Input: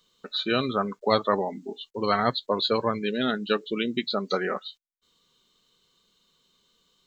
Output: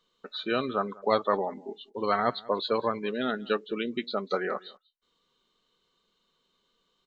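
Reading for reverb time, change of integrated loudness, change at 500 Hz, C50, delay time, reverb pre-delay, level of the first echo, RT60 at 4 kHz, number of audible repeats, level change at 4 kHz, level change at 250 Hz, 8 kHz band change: no reverb, -3.0 dB, -2.0 dB, no reverb, 193 ms, no reverb, -23.0 dB, no reverb, 1, -7.5 dB, -4.5 dB, no reading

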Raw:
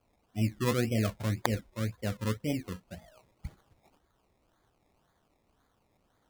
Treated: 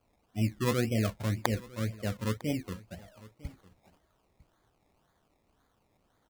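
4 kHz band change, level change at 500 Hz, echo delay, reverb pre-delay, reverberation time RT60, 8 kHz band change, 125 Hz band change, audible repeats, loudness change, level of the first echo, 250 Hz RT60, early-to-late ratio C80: 0.0 dB, 0.0 dB, 952 ms, no reverb, no reverb, 0.0 dB, 0.0 dB, 1, 0.0 dB, -21.0 dB, no reverb, no reverb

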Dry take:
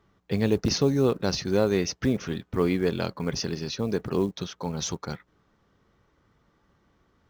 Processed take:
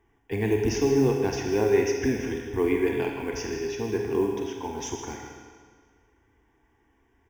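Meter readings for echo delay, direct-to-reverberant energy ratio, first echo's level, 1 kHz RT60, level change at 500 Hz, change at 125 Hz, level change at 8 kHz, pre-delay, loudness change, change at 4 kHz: 158 ms, 1.0 dB, -12.0 dB, 1.7 s, +2.5 dB, -3.0 dB, -2.0 dB, 30 ms, +0.5 dB, -7.0 dB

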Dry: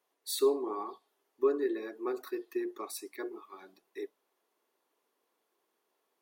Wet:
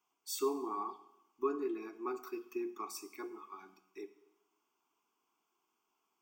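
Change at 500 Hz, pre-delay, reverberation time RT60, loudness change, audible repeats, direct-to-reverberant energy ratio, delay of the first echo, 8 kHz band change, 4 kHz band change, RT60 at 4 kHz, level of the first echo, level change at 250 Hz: -7.5 dB, 6 ms, 0.90 s, -5.5 dB, no echo, 12.0 dB, no echo, -3.0 dB, -6.5 dB, 0.85 s, no echo, -4.0 dB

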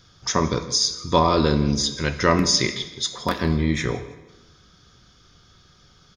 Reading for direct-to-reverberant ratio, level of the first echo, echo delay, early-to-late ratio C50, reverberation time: 9.5 dB, -19.0 dB, 162 ms, 11.5 dB, 1.1 s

